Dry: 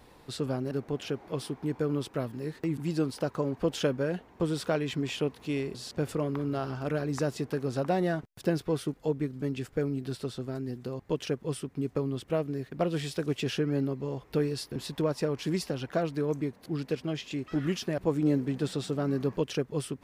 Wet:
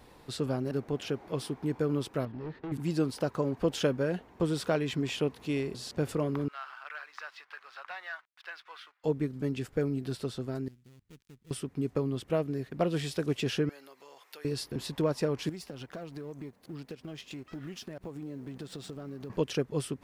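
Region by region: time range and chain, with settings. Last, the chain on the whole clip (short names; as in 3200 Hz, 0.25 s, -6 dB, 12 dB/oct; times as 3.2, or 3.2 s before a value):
2.25–2.72 overloaded stage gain 35 dB + air absorption 270 m
6.48–9.04 HPF 1200 Hz 24 dB/oct + air absorption 320 m + sample leveller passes 1
10.68–11.51 switching dead time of 0.26 ms + passive tone stack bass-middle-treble 6-0-2 + tube stage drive 45 dB, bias 0.45
13.69–14.45 HPF 850 Hz + compressor 2.5:1, threshold -49 dBFS + tilt +2 dB/oct
15.49–19.3 G.711 law mismatch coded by A + compressor, threshold -38 dBFS
whole clip: dry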